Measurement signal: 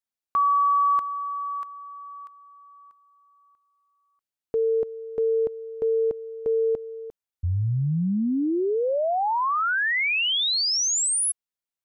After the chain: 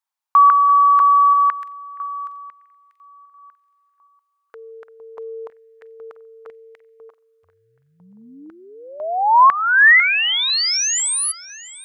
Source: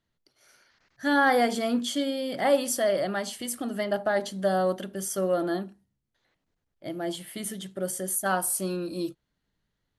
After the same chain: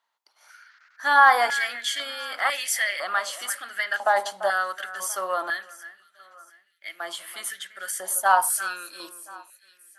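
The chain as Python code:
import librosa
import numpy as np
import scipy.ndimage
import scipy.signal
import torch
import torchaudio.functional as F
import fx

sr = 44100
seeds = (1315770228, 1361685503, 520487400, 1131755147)

y = fx.echo_alternate(x, sr, ms=342, hz=2300.0, feedback_pct=57, wet_db=-13.5)
y = fx.filter_held_highpass(y, sr, hz=2.0, low_hz=920.0, high_hz=2000.0)
y = y * librosa.db_to_amplitude(3.0)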